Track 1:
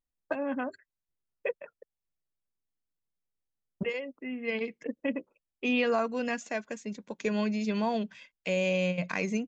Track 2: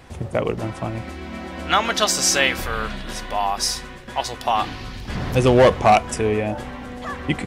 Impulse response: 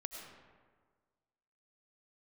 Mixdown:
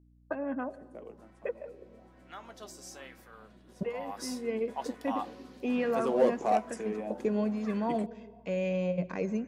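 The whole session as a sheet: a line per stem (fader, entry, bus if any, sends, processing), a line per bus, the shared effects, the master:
-3.0 dB, 0.00 s, send -9 dB, LPF 2900 Hz 6 dB/oct
3.77 s -21 dB -> 4.15 s -10 dB, 0.60 s, no send, steep high-pass 170 Hz 48 dB/oct; flange 0.72 Hz, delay 4.8 ms, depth 5.9 ms, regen -75%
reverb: on, RT60 1.6 s, pre-delay 60 ms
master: bell 2600 Hz -9.5 dB 2.4 oct; hum 60 Hz, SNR 27 dB; LFO bell 1.1 Hz 340–2000 Hz +7 dB

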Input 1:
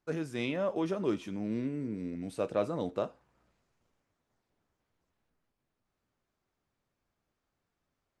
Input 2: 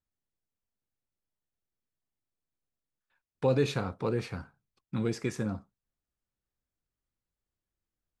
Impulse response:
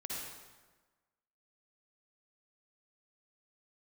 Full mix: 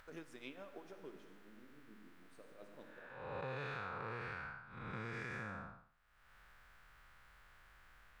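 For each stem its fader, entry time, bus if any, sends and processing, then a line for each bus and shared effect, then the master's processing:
-13.5 dB, 0.00 s, send -17 dB, tremolo triangle 6.9 Hz, depth 80%; harmonic-percussive split percussive +9 dB; auto duck -18 dB, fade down 1.30 s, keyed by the second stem
+1.5 dB, 0.00 s, no send, time blur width 0.274 s; EQ curve 110 Hz 0 dB, 280 Hz -13 dB, 1500 Hz +12 dB, 6500 Hz -11 dB; upward compressor, threshold -42 dBFS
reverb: on, RT60 1.3 s, pre-delay 48 ms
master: bell 87 Hz -9.5 dB 1 oct; compressor 6:1, threshold -41 dBFS, peak gain reduction 10.5 dB

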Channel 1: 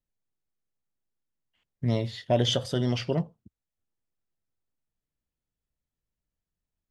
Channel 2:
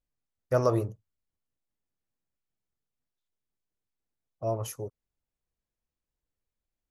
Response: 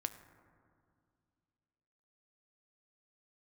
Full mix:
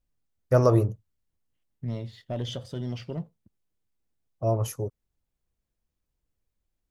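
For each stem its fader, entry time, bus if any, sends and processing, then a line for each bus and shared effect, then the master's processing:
-14.5 dB, 0.00 s, no send, sample leveller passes 1
+2.0 dB, 0.00 s, no send, dry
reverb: off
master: low shelf 330 Hz +7 dB

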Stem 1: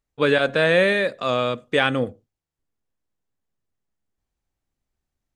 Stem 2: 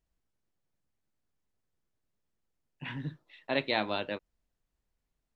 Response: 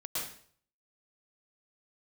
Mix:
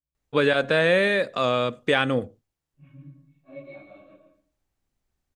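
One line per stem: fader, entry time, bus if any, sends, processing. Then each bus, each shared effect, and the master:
+2.5 dB, 0.15 s, no send, dry
-5.0 dB, 0.00 s, send -7 dB, phase scrambler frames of 0.1 s; octave resonator C#, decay 0.13 s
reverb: on, RT60 0.55 s, pre-delay 0.103 s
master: compressor 1.5:1, threshold -24 dBFS, peak gain reduction 5 dB

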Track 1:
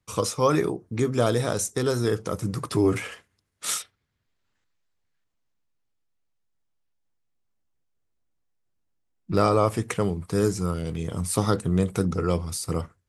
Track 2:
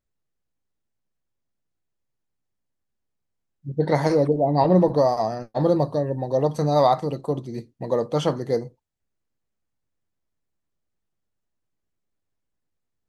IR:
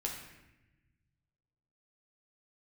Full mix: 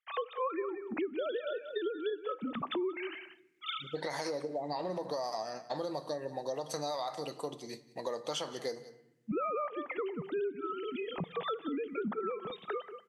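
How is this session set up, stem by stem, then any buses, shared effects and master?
-3.0 dB, 0.00 s, send -19.5 dB, echo send -13 dB, sine-wave speech
-7.5 dB, 0.15 s, send -12.5 dB, echo send -19 dB, weighting filter A; limiter -15.5 dBFS, peak gain reduction 7.5 dB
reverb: on, RT60 0.95 s, pre-delay 8 ms
echo: echo 0.183 s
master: high shelf 2600 Hz +12 dB; compressor 6:1, threshold -33 dBFS, peak gain reduction 18.5 dB

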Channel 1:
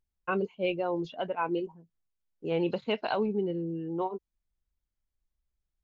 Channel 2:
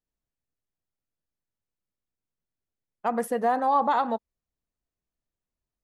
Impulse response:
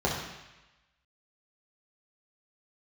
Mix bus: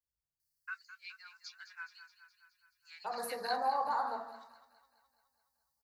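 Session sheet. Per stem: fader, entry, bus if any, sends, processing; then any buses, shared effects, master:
+2.0 dB, 0.40 s, no send, echo send -11.5 dB, steep high-pass 1700 Hz 36 dB/oct
-16.5 dB, 0.00 s, send -5.5 dB, echo send -16.5 dB, dry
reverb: on, RT60 1.0 s, pre-delay 3 ms
echo: feedback echo 0.21 s, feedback 60%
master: EQ curve 120 Hz 0 dB, 210 Hz -13 dB, 450 Hz -10 dB, 910 Hz -3 dB, 1700 Hz +1 dB, 3100 Hz -24 dB, 4500 Hz +10 dB, 6700 Hz +5 dB, 12000 Hz +11 dB

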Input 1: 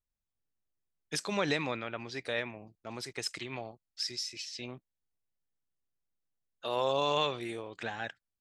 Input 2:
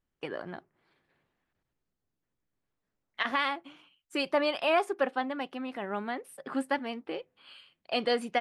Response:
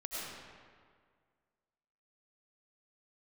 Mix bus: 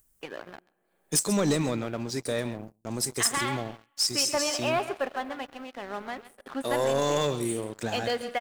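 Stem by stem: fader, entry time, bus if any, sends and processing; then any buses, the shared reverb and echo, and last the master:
+0.5 dB, 0.00 s, no send, echo send -15 dB, EQ curve 230 Hz 0 dB, 2900 Hz -16 dB, 8600 Hz +11 dB
-12.5 dB, 0.00 s, send -16 dB, echo send -12 dB, low shelf 180 Hz -7.5 dB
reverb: on, RT60 1.9 s, pre-delay 60 ms
echo: echo 0.134 s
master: sample leveller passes 3; upward compressor, threshold -48 dBFS

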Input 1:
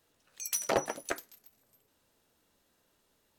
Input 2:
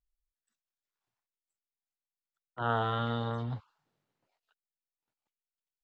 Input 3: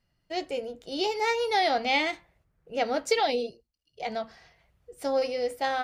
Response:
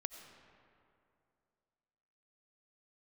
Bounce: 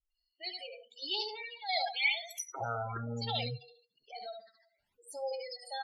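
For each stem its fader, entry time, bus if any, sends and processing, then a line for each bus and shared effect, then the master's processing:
-2.0 dB, 1.85 s, no send, no echo send, dry
-1.0 dB, 0.00 s, no send, no echo send, LPF 3400 Hz 24 dB/oct
-2.5 dB, 0.10 s, no send, echo send -4 dB, high shelf 2200 Hz +11.5 dB; chopper 0.63 Hz, depth 65%, duty 75%; HPF 1100 Hz 6 dB/oct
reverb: off
echo: feedback echo 72 ms, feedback 43%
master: spectral gate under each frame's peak -10 dB strong; resonator 67 Hz, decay 0.24 s, harmonics all, mix 50%; phaser stages 12, 1 Hz, lowest notch 310–2200 Hz

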